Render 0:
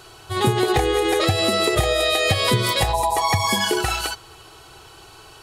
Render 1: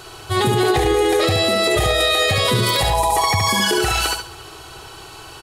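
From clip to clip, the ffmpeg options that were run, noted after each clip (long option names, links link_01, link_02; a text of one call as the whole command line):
ffmpeg -i in.wav -af "aecho=1:1:70|140|210:0.501|0.13|0.0339,alimiter=level_in=13.5dB:limit=-1dB:release=50:level=0:latency=1,volume=-7.5dB" out.wav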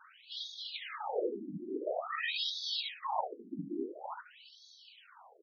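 ffmpeg -i in.wav -af "afftfilt=real='hypot(re,im)*cos(2*PI*random(0))':imag='hypot(re,im)*sin(2*PI*random(1))':win_size=512:overlap=0.75,afftfilt=real='re*between(b*sr/1024,240*pow(4700/240,0.5+0.5*sin(2*PI*0.48*pts/sr))/1.41,240*pow(4700/240,0.5+0.5*sin(2*PI*0.48*pts/sr))*1.41)':imag='im*between(b*sr/1024,240*pow(4700/240,0.5+0.5*sin(2*PI*0.48*pts/sr))/1.41,240*pow(4700/240,0.5+0.5*sin(2*PI*0.48*pts/sr))*1.41)':win_size=1024:overlap=0.75,volume=-7dB" out.wav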